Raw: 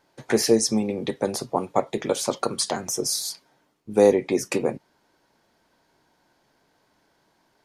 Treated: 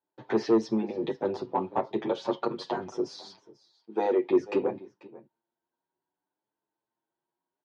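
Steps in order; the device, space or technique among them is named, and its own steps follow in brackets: gate with hold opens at -42 dBFS; 3.21–4.31 s: high-pass 330 Hz 12 dB/octave; delay 491 ms -21 dB; barber-pole flanger into a guitar amplifier (endless flanger 7.6 ms +0.64 Hz; saturation -17 dBFS, distortion -13 dB; cabinet simulation 100–3700 Hz, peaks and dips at 350 Hz +9 dB, 920 Hz +7 dB, 2.2 kHz -6 dB); trim -2.5 dB

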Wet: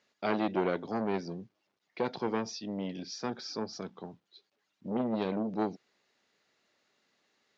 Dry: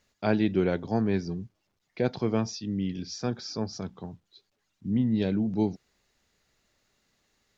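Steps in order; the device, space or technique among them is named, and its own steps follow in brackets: public-address speaker with an overloaded transformer (transformer saturation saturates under 740 Hz; band-pass 250–5100 Hz)

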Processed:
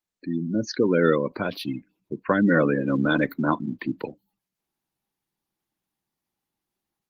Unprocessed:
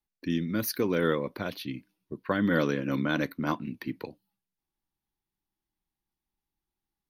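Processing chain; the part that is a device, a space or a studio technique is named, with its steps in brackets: 0.46–0.68 s: time-frequency box 850–6100 Hz -7 dB; 2.54–3.06 s: hum notches 60/120/180/240/300/360/420/480 Hz; noise-suppressed video call (high-pass 120 Hz 12 dB/octave; spectral gate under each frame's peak -20 dB strong; level rider gain up to 7 dB; Opus 20 kbps 48 kHz)

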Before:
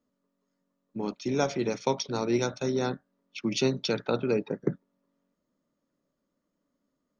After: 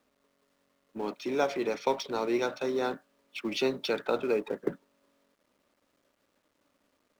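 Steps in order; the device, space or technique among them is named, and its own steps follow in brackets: phone line with mismatched companding (band-pass 350–3500 Hz; companding laws mixed up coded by mu)

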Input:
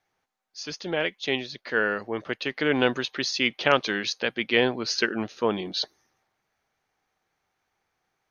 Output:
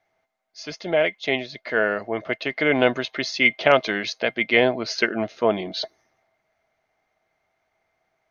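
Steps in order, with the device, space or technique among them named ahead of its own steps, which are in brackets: inside a helmet (treble shelf 5.9 kHz -9 dB; small resonant body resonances 650/2100 Hz, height 16 dB, ringing for 65 ms); trim +2 dB

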